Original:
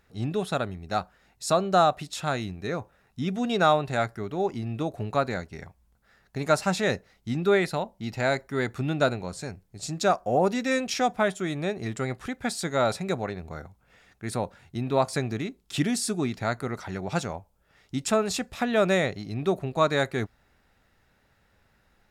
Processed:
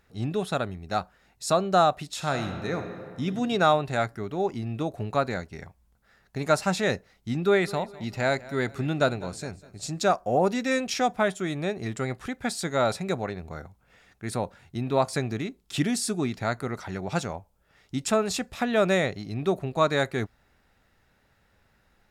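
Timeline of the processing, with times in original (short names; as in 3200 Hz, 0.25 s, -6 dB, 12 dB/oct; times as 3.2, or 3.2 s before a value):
2.08–3.24 reverb throw, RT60 2 s, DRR 5.5 dB
7.43–10.03 feedback echo 0.203 s, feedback 42%, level -19.5 dB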